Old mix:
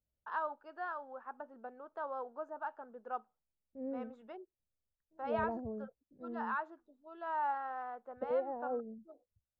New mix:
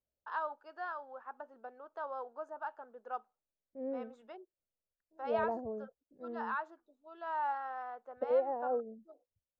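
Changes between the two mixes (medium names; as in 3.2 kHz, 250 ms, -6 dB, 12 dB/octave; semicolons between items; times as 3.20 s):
second voice +5.0 dB; master: add tone controls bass -13 dB, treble +9 dB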